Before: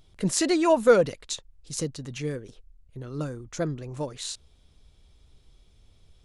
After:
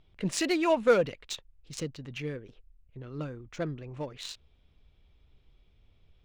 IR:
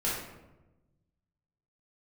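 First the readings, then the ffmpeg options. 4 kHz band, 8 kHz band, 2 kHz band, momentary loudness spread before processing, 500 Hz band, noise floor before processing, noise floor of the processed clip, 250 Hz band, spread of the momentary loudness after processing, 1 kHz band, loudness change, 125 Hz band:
-3.5 dB, -8.5 dB, -1.5 dB, 16 LU, -5.0 dB, -59 dBFS, -64 dBFS, -5.0 dB, 18 LU, -4.0 dB, -4.5 dB, -5.0 dB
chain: -af "adynamicsmooth=sensitivity=5.5:basefreq=3000,equalizer=f=2600:w=1.4:g=7.5,volume=0.562"

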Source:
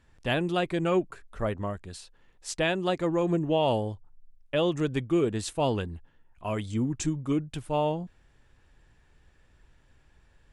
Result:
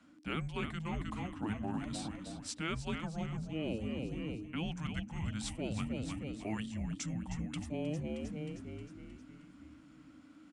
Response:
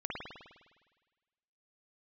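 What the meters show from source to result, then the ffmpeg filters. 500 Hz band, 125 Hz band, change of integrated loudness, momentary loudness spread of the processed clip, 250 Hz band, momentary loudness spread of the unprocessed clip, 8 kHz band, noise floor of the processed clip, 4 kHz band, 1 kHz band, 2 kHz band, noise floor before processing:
-16.0 dB, -6.5 dB, -10.5 dB, 16 LU, -8.0 dB, 14 LU, -6.0 dB, -58 dBFS, -8.5 dB, -13.0 dB, -8.5 dB, -63 dBFS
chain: -filter_complex "[0:a]equalizer=f=290:w=0.98:g=-5,asplit=2[s0][s1];[s1]asplit=7[s2][s3][s4][s5][s6][s7][s8];[s2]adelay=312,afreqshift=-59,volume=0.335[s9];[s3]adelay=624,afreqshift=-118,volume=0.188[s10];[s4]adelay=936,afreqshift=-177,volume=0.105[s11];[s5]adelay=1248,afreqshift=-236,volume=0.0589[s12];[s6]adelay=1560,afreqshift=-295,volume=0.0331[s13];[s7]adelay=1872,afreqshift=-354,volume=0.0184[s14];[s8]adelay=2184,afreqshift=-413,volume=0.0104[s15];[s9][s10][s11][s12][s13][s14][s15]amix=inputs=7:normalize=0[s16];[s0][s16]amix=inputs=2:normalize=0,areverse,acompressor=threshold=0.0158:ratio=6,areverse,afreqshift=-320,highpass=42,bandreject=f=6800:w=18,aresample=22050,aresample=44100,volume=1.19"

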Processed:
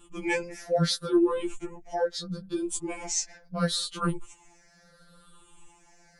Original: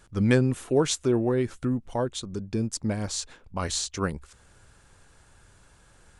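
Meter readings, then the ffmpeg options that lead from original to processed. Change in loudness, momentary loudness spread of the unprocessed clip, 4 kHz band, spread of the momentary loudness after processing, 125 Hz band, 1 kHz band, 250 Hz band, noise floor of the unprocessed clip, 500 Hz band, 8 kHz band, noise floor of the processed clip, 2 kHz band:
-2.0 dB, 10 LU, +1.5 dB, 12 LU, -6.5 dB, +1.0 dB, -3.0 dB, -58 dBFS, -2.0 dB, -0.5 dB, -60 dBFS, 0.0 dB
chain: -af "afftfilt=real='re*pow(10,17/40*sin(2*PI*(0.66*log(max(b,1)*sr/1024/100)/log(2)-(-0.73)*(pts-256)/sr)))':imag='im*pow(10,17/40*sin(2*PI*(0.66*log(max(b,1)*sr/1024/100)/log(2)-(-0.73)*(pts-256)/sr)))':win_size=1024:overlap=0.75,afftfilt=real='re*2.83*eq(mod(b,8),0)':imag='im*2.83*eq(mod(b,8),0)':win_size=2048:overlap=0.75"

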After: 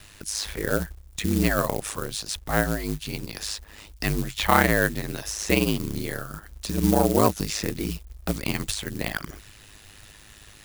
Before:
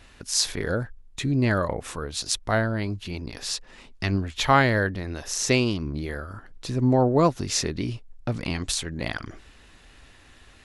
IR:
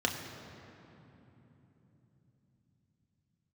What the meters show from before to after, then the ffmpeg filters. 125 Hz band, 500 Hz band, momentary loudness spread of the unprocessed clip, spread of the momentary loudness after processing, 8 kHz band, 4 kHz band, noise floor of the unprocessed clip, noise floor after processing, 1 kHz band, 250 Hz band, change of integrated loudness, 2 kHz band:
-2.5 dB, -0.5 dB, 13 LU, 13 LU, -2.0 dB, -2.0 dB, -52 dBFS, -50 dBFS, -0.5 dB, 0.0 dB, -0.5 dB, +1.0 dB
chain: -filter_complex "[0:a]acrossover=split=240|2900[s0][s1][s2];[s2]acompressor=threshold=0.00794:ratio=6[s3];[s0][s1][s3]amix=inputs=3:normalize=0,acrusher=bits=5:mode=log:mix=0:aa=0.000001,asoftclip=type=tanh:threshold=0.473,crystalizer=i=2.5:c=0,aeval=exprs='val(0)*sin(2*PI*52*n/s)':c=same,volume=1.41"

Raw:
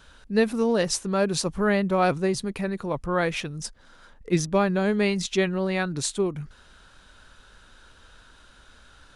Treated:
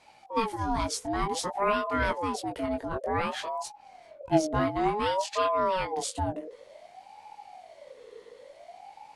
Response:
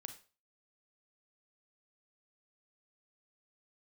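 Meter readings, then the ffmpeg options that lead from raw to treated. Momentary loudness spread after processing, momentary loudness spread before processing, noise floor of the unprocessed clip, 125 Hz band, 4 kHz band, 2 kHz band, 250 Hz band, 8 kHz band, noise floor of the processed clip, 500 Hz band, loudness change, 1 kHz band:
22 LU, 8 LU, -54 dBFS, -8.0 dB, -4.5 dB, -5.5 dB, -7.5 dB, -6.5 dB, -55 dBFS, -5.5 dB, -4.5 dB, +2.5 dB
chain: -af "asubboost=boost=3:cutoff=220,flanger=delay=17.5:depth=4.4:speed=0.47,aeval=exprs='val(0)*sin(2*PI*650*n/s+650*0.3/0.55*sin(2*PI*0.55*n/s))':c=same"

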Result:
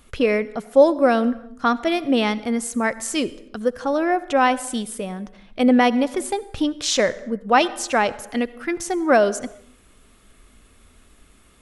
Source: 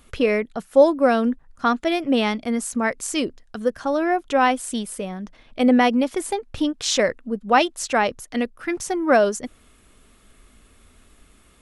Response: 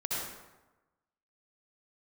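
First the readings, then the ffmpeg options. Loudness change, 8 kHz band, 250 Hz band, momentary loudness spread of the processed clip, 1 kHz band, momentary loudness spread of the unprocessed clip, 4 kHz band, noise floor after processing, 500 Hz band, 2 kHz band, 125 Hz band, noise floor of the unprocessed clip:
+0.5 dB, +0.5 dB, +0.5 dB, 12 LU, +0.5 dB, 12 LU, +0.5 dB, -54 dBFS, +0.5 dB, +0.5 dB, +0.5 dB, -55 dBFS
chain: -filter_complex "[0:a]asplit=2[s0][s1];[1:a]atrim=start_sample=2205,afade=t=out:st=0.41:d=0.01,atrim=end_sample=18522[s2];[s1][s2]afir=irnorm=-1:irlink=0,volume=0.0841[s3];[s0][s3]amix=inputs=2:normalize=0"

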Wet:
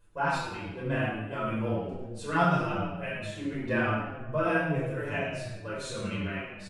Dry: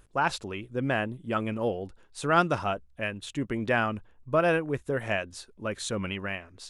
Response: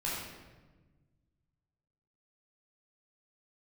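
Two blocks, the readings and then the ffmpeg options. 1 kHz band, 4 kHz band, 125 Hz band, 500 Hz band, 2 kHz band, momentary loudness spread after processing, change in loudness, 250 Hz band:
-2.0 dB, -4.0 dB, +2.0 dB, -3.0 dB, -1.5 dB, 10 LU, -1.5 dB, 0.0 dB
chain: -filter_complex "[1:a]atrim=start_sample=2205[s0];[0:a][s0]afir=irnorm=-1:irlink=0,asplit=2[s1][s2];[s2]adelay=6.2,afreqshift=-1.8[s3];[s1][s3]amix=inputs=2:normalize=1,volume=0.596"

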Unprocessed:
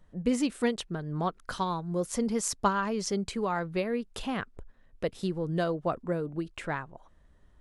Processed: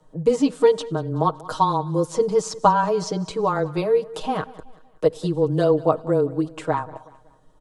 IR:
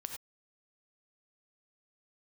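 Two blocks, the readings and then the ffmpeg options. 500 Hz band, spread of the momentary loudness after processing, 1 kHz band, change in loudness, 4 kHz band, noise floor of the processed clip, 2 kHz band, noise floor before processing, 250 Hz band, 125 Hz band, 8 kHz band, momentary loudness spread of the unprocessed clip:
+12.5 dB, 8 LU, +11.0 dB, +9.5 dB, +4.0 dB, -55 dBFS, +2.0 dB, -60 dBFS, +5.5 dB, +8.5 dB, 0.0 dB, 8 LU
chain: -filter_complex "[0:a]equalizer=f=250:t=o:w=1:g=3,equalizer=f=500:t=o:w=1:g=8,equalizer=f=1000:t=o:w=1:g=9,equalizer=f=2000:t=o:w=1:g=-7,equalizer=f=4000:t=o:w=1:g=3,equalizer=f=8000:t=o:w=1:g=7,acrossover=split=120|5600[s0][s1][s2];[s2]acompressor=threshold=0.00355:ratio=6[s3];[s0][s1][s3]amix=inputs=3:normalize=0,aecho=1:1:6.3:0.91,aecho=1:1:188|376|564:0.1|0.042|0.0176,afreqshift=-15,asplit=2[s4][s5];[1:a]atrim=start_sample=2205[s6];[s5][s6]afir=irnorm=-1:irlink=0,volume=0.133[s7];[s4][s7]amix=inputs=2:normalize=0,volume=0.891"

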